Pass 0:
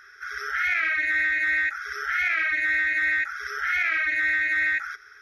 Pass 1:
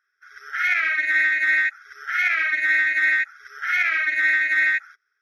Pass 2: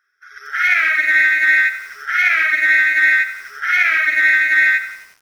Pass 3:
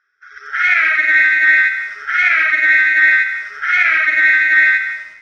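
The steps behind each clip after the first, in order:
low-shelf EQ 320 Hz −11.5 dB; expander for the loud parts 2.5 to 1, over −43 dBFS; level +6 dB
feedback echo at a low word length 89 ms, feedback 55%, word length 7 bits, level −11.5 dB; level +6 dB
high-frequency loss of the air 110 metres; on a send at −11 dB: convolution reverb RT60 1.3 s, pre-delay 65 ms; on the sum: level +2.5 dB

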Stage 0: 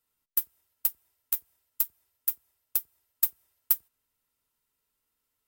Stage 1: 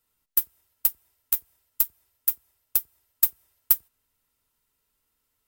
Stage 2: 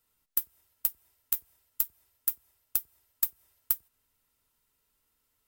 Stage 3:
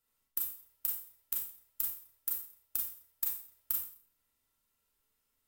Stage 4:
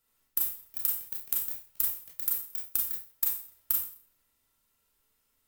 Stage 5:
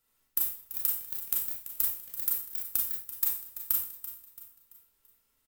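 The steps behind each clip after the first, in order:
low-shelf EQ 90 Hz +6 dB; level +4.5 dB
downward compressor 6 to 1, threshold −24 dBFS, peak gain reduction 11 dB
four-comb reverb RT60 0.45 s, combs from 28 ms, DRR −1.5 dB; level −7.5 dB
delay with pitch and tempo change per echo 132 ms, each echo +5 semitones, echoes 3, each echo −6 dB; level +5.5 dB
repeating echo 336 ms, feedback 42%, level −13 dB

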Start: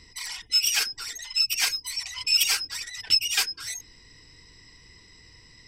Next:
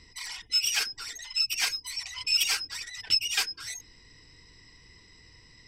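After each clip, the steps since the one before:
high-shelf EQ 8,900 Hz −7 dB
level −2 dB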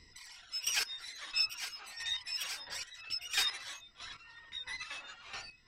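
delay with pitch and tempo change per echo 133 ms, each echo −6 semitones, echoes 3, each echo −6 dB
square-wave tremolo 1.5 Hz, depth 65%, duty 25%
level −5 dB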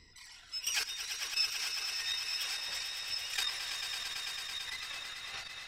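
on a send: echo that builds up and dies away 111 ms, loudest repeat 5, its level −9.5 dB
on the sum: saturating transformer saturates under 1,700 Hz

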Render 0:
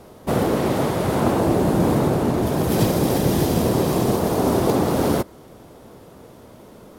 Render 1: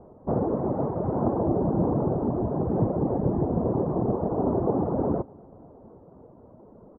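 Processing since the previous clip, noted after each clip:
reverb reduction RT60 0.6 s
inverse Chebyshev low-pass filter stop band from 4,300 Hz, stop band 70 dB
repeating echo 246 ms, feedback 58%, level −24 dB
level −4 dB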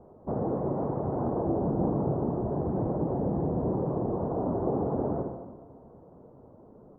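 in parallel at −3 dB: brickwall limiter −21.5 dBFS, peak gain reduction 10 dB
on the sum: convolution reverb RT60 1.2 s, pre-delay 39 ms, DRR 3.5 dB
level −8.5 dB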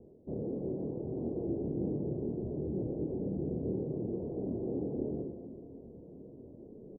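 reversed playback
upward compression, threshold −33 dBFS
reversed playback
transistor ladder low-pass 490 Hz, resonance 35%
double-tracking delay 26 ms −4 dB
level −2 dB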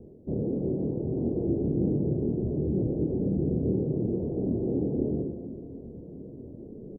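low-shelf EQ 490 Hz +10.5 dB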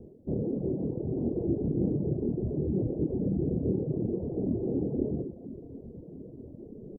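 reverb reduction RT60 0.76 s

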